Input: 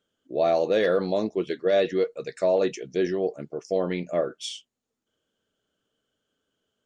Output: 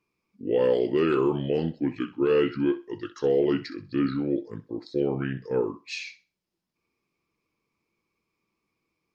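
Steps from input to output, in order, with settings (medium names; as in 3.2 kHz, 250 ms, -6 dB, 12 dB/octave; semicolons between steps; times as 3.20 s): tape speed -25%; thinning echo 64 ms, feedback 25%, high-pass 420 Hz, level -15 dB; trim -1 dB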